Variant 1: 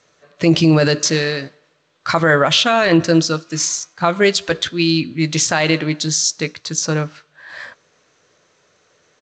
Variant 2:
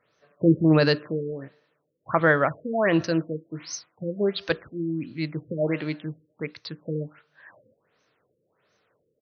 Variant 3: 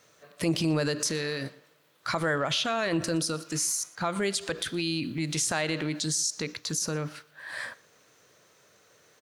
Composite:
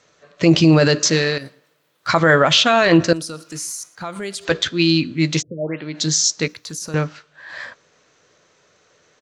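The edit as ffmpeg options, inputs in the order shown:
-filter_complex "[2:a]asplit=3[a][b][c];[0:a]asplit=5[d][e][f][g][h];[d]atrim=end=1.382[i];[a]atrim=start=1.378:end=2.072[j];[e]atrim=start=2.068:end=3.132[k];[b]atrim=start=3.128:end=4.452[l];[f]atrim=start=4.448:end=5.43[m];[1:a]atrim=start=5.37:end=5.99[n];[g]atrim=start=5.93:end=6.482[o];[c]atrim=start=6.478:end=6.942[p];[h]atrim=start=6.938[q];[i][j]acrossfade=d=0.004:c1=hsin:c2=hsin[r];[r][k]acrossfade=d=0.004:c1=hsin:c2=hsin[s];[s][l]acrossfade=d=0.004:c1=hsin:c2=hsin[t];[t][m]acrossfade=d=0.004:c1=hsin:c2=hsin[u];[u][n]acrossfade=d=0.06:c1=tri:c2=tri[v];[v][o]acrossfade=d=0.06:c1=tri:c2=tri[w];[w][p]acrossfade=d=0.004:c1=hsin:c2=hsin[x];[x][q]acrossfade=d=0.004:c1=hsin:c2=hsin"

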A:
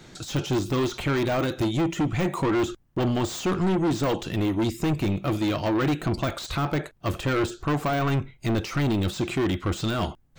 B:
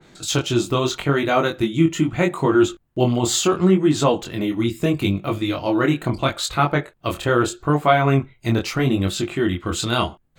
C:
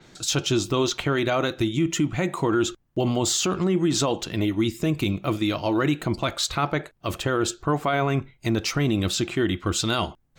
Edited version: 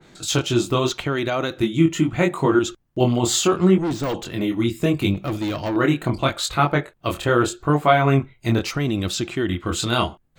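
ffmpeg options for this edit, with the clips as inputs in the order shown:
-filter_complex "[2:a]asplit=3[a][b][c];[0:a]asplit=2[d][e];[1:a]asplit=6[f][g][h][i][j][k];[f]atrim=end=0.922[l];[a]atrim=start=0.918:end=1.572[m];[g]atrim=start=1.568:end=2.592[n];[b]atrim=start=2.588:end=3.002[o];[h]atrim=start=2.998:end=3.782[p];[d]atrim=start=3.778:end=4.182[q];[i]atrim=start=4.178:end=5.142[r];[e]atrim=start=5.138:end=5.762[s];[j]atrim=start=5.758:end=8.712[t];[c]atrim=start=8.708:end=9.492[u];[k]atrim=start=9.488[v];[l][m]acrossfade=d=0.004:c1=hsin:c2=hsin[w];[w][n]acrossfade=d=0.004:c1=hsin:c2=hsin[x];[x][o]acrossfade=d=0.004:c1=hsin:c2=hsin[y];[y][p]acrossfade=d=0.004:c1=hsin:c2=hsin[z];[z][q]acrossfade=d=0.004:c1=hsin:c2=hsin[aa];[aa][r]acrossfade=d=0.004:c1=hsin:c2=hsin[ab];[ab][s]acrossfade=d=0.004:c1=hsin:c2=hsin[ac];[ac][t]acrossfade=d=0.004:c1=hsin:c2=hsin[ad];[ad][u]acrossfade=d=0.004:c1=hsin:c2=hsin[ae];[ae][v]acrossfade=d=0.004:c1=hsin:c2=hsin"

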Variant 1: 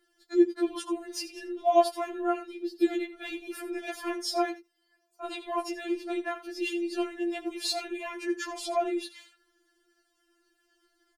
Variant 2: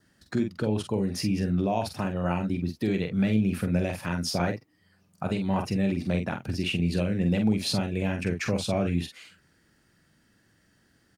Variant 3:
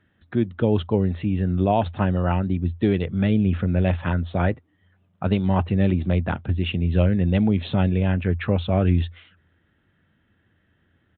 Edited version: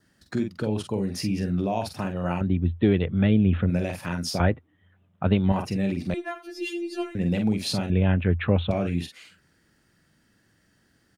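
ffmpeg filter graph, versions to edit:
-filter_complex "[2:a]asplit=3[a][b][c];[1:a]asplit=5[d][e][f][g][h];[d]atrim=end=2.412[i];[a]atrim=start=2.408:end=3.702[j];[e]atrim=start=3.698:end=4.402[k];[b]atrim=start=4.398:end=5.522[l];[f]atrim=start=5.518:end=6.142[m];[0:a]atrim=start=6.138:end=7.152[n];[g]atrim=start=7.148:end=7.902[o];[c]atrim=start=7.898:end=8.712[p];[h]atrim=start=8.708[q];[i][j]acrossfade=d=0.004:c1=hsin:c2=hsin[r];[r][k]acrossfade=d=0.004:c1=hsin:c2=hsin[s];[s][l]acrossfade=d=0.004:c1=hsin:c2=hsin[t];[t][m]acrossfade=d=0.004:c1=hsin:c2=hsin[u];[u][n]acrossfade=d=0.004:c1=hsin:c2=hsin[v];[v][o]acrossfade=d=0.004:c1=hsin:c2=hsin[w];[w][p]acrossfade=d=0.004:c1=hsin:c2=hsin[x];[x][q]acrossfade=d=0.004:c1=hsin:c2=hsin"

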